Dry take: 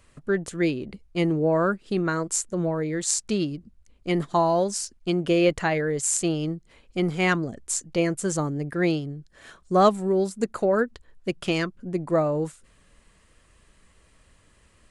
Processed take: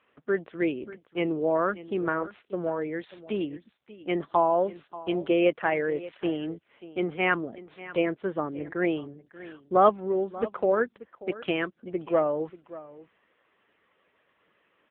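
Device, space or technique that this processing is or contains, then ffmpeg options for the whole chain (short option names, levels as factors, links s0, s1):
satellite phone: -af "highpass=310,lowpass=3200,aecho=1:1:586:0.141" -ar 8000 -c:a libopencore_amrnb -b:a 6700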